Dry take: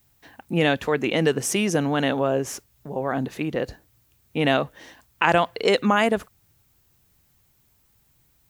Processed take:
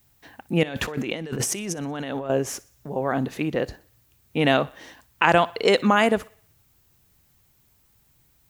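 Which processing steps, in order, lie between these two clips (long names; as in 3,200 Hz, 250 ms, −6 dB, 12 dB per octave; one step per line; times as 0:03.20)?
0:00.63–0:02.30: compressor whose output falls as the input rises −31 dBFS, ratio −1
feedback echo with a high-pass in the loop 61 ms, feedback 50%, high-pass 310 Hz, level −22 dB
level +1 dB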